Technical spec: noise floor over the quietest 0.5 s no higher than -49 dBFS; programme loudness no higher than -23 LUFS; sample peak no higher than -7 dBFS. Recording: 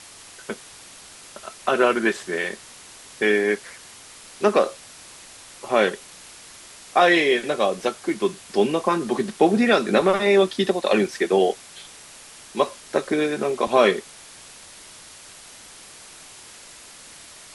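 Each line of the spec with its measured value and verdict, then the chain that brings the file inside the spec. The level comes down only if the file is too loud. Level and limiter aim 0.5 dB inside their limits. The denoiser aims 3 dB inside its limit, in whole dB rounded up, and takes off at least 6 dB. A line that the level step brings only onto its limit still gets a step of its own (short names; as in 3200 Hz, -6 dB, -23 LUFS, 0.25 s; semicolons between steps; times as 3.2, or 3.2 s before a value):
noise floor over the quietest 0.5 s -44 dBFS: fail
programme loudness -21.5 LUFS: fail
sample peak -4.5 dBFS: fail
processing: denoiser 6 dB, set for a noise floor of -44 dBFS; gain -2 dB; limiter -7.5 dBFS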